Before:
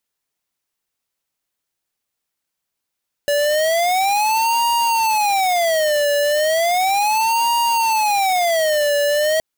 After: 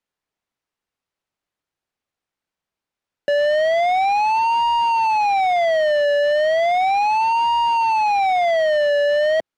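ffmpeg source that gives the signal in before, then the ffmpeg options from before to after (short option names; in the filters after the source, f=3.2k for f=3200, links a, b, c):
-f lavfi -i "aevalsrc='0.141*(2*lt(mod((759*t-181/(2*PI*0.35)*sin(2*PI*0.35*t)),1),0.5)-1)':d=6.12:s=44100"
-filter_complex "[0:a]aemphasis=mode=reproduction:type=75fm,acrossover=split=4700[a][b];[b]acompressor=threshold=-52dB:ratio=4:attack=1:release=60[c];[a][c]amix=inputs=2:normalize=0,acrossover=split=150|3900[d][e][f];[d]aeval=exprs='(mod(133*val(0)+1,2)-1)/133':c=same[g];[g][e][f]amix=inputs=3:normalize=0"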